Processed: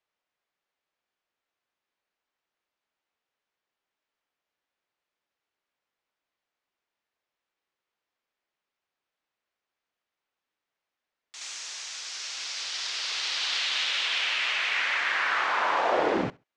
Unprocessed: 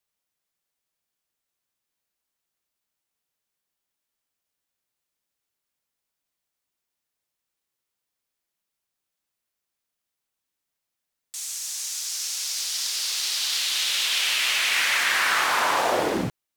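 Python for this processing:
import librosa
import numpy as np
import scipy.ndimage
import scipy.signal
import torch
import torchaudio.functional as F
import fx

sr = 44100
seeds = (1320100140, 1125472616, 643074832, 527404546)

y = scipy.signal.sosfilt(scipy.signal.butter(4, 7000.0, 'lowpass', fs=sr, output='sos'), x)
y = fx.bass_treble(y, sr, bass_db=-10, treble_db=-14)
y = fx.rider(y, sr, range_db=4, speed_s=0.5)
y = fx.echo_feedback(y, sr, ms=68, feedback_pct=18, wet_db=-23.5)
y = fx.env_flatten(y, sr, amount_pct=100, at=(11.41, 11.96))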